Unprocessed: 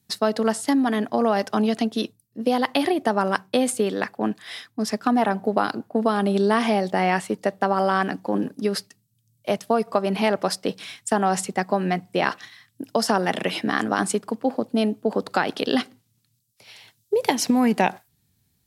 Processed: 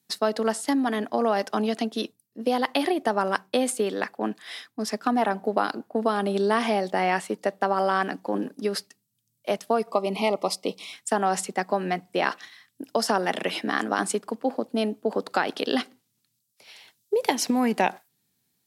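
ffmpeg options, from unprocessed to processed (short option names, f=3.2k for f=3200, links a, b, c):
-filter_complex "[0:a]asettb=1/sr,asplit=3[a][b][c];[a]atrim=end=9.914[d];[b]atrim=start=9.91:end=10.93,asetpts=PTS-STARTPTS,afade=t=in:d=0.004:c=qsin,afade=t=out:st=1.016:d=0.004:c=qsin,asuperstop=centerf=1600:order=8:qfactor=2.2[e];[c]atrim=start=10.926[f];[d][e]acrossfade=d=0.004:c1=hsin:c2=qsin[g];[g][f]acrossfade=d=0.004:c1=qsin:c2=hsin,highpass=230,volume=-2dB"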